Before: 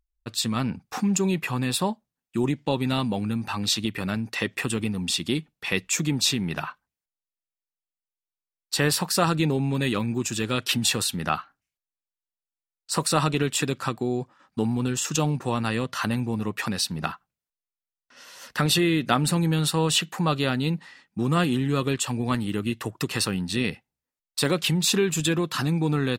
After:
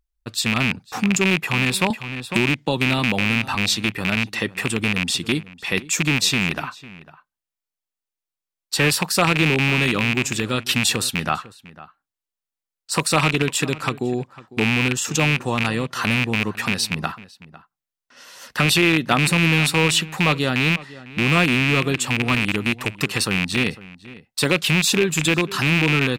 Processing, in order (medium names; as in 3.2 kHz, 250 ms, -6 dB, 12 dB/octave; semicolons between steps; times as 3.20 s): rattle on loud lows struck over -26 dBFS, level -11 dBFS; echo from a far wall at 86 m, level -18 dB; 1.90–3.55 s: three bands compressed up and down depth 70%; trim +3 dB